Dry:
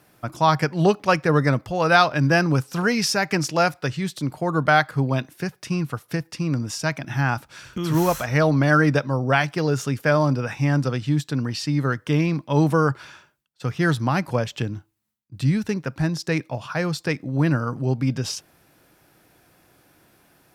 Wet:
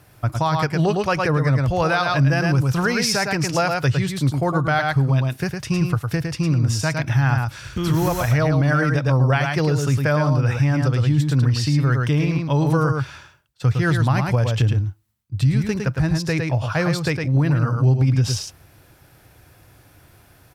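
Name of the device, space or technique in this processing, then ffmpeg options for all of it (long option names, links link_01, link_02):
car stereo with a boomy subwoofer: -af "lowshelf=frequency=140:width_type=q:width=1.5:gain=10,aecho=1:1:108:0.531,alimiter=limit=-13.5dB:level=0:latency=1:release=192,volume=3.5dB"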